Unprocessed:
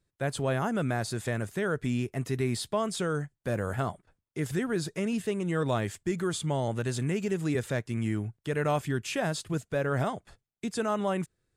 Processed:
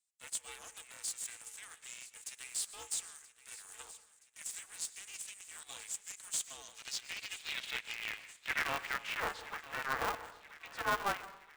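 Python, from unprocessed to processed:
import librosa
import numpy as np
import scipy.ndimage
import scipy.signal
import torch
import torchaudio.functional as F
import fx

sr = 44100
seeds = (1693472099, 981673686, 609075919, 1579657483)

p1 = fx.high_shelf(x, sr, hz=4200.0, db=5.0)
p2 = fx.level_steps(p1, sr, step_db=14)
p3 = p1 + F.gain(torch.from_numpy(p2), -3.0).numpy()
p4 = scipy.signal.sosfilt(scipy.signal.cheby1(6, 9, 640.0, 'highpass', fs=sr, output='sos'), p3)
p5 = fx.rev_freeverb(p4, sr, rt60_s=0.78, hf_ratio=0.45, predelay_ms=85, drr_db=15.5)
p6 = fx.filter_sweep_bandpass(p5, sr, from_hz=7800.0, to_hz=1200.0, start_s=6.29, end_s=9.27, q=2.9)
p7 = 10.0 ** (-31.5 / 20.0) * np.tanh(p6 / 10.0 ** (-31.5 / 20.0))
p8 = fx.echo_feedback(p7, sr, ms=975, feedback_pct=51, wet_db=-16)
p9 = p8 * np.sign(np.sin(2.0 * np.pi * 200.0 * np.arange(len(p8)) / sr))
y = F.gain(torch.from_numpy(p9), 8.0).numpy()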